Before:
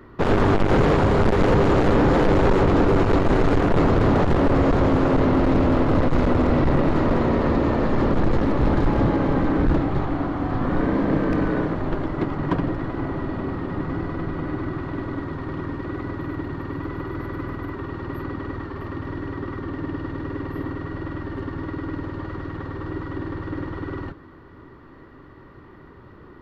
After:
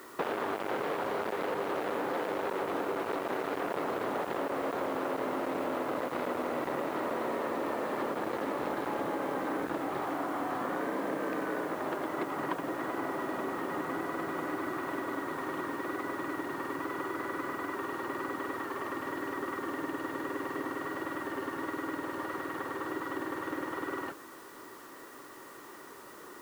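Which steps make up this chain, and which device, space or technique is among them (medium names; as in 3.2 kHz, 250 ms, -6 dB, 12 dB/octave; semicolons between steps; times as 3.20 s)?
baby monitor (band-pass 450–4300 Hz; compression, threshold -32 dBFS, peak gain reduction 13.5 dB; white noise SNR 22 dB); trim +1.5 dB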